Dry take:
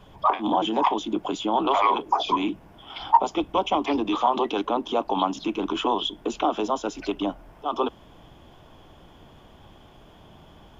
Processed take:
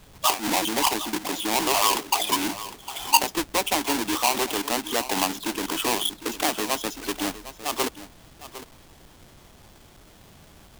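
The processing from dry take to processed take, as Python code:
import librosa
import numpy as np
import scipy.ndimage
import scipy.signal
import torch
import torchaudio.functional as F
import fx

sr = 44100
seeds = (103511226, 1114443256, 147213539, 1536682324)

p1 = fx.halfwave_hold(x, sr)
p2 = fx.high_shelf(p1, sr, hz=2500.0, db=9.0)
p3 = p2 + fx.echo_single(p2, sr, ms=756, db=-14.5, dry=0)
y = F.gain(torch.from_numpy(p3), -7.0).numpy()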